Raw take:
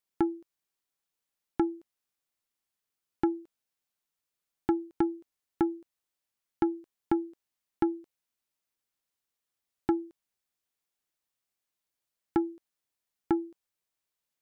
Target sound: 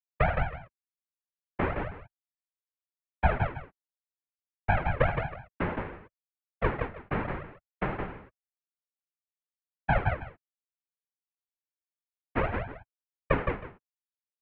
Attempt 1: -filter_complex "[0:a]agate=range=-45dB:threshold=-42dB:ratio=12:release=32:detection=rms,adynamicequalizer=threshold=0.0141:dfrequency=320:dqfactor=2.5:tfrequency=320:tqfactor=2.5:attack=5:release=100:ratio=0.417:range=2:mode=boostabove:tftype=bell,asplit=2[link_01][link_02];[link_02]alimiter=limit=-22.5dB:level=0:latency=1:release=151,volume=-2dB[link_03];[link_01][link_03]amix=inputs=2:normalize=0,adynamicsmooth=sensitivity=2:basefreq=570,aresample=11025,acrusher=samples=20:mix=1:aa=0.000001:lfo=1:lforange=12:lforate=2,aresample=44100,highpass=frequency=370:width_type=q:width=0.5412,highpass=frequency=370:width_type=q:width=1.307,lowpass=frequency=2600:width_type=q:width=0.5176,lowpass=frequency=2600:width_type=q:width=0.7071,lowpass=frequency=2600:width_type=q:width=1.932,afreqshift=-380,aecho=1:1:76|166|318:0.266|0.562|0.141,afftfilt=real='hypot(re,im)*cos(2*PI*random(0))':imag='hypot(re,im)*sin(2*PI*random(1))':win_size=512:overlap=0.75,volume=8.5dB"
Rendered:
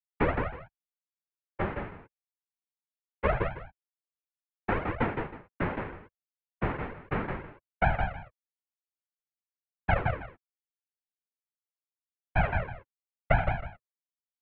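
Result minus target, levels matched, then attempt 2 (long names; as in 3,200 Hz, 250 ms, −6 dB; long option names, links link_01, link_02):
sample-and-hold swept by an LFO: distortion +8 dB
-filter_complex "[0:a]agate=range=-45dB:threshold=-42dB:ratio=12:release=32:detection=rms,adynamicequalizer=threshold=0.0141:dfrequency=320:dqfactor=2.5:tfrequency=320:tqfactor=2.5:attack=5:release=100:ratio=0.417:range=2:mode=boostabove:tftype=bell,asplit=2[link_01][link_02];[link_02]alimiter=limit=-22.5dB:level=0:latency=1:release=151,volume=-2dB[link_03];[link_01][link_03]amix=inputs=2:normalize=0,adynamicsmooth=sensitivity=2:basefreq=570,aresample=11025,acrusher=samples=20:mix=1:aa=0.000001:lfo=1:lforange=12:lforate=2.7,aresample=44100,highpass=frequency=370:width_type=q:width=0.5412,highpass=frequency=370:width_type=q:width=1.307,lowpass=frequency=2600:width_type=q:width=0.5176,lowpass=frequency=2600:width_type=q:width=0.7071,lowpass=frequency=2600:width_type=q:width=1.932,afreqshift=-380,aecho=1:1:76|166|318:0.266|0.562|0.141,afftfilt=real='hypot(re,im)*cos(2*PI*random(0))':imag='hypot(re,im)*sin(2*PI*random(1))':win_size=512:overlap=0.75,volume=8.5dB"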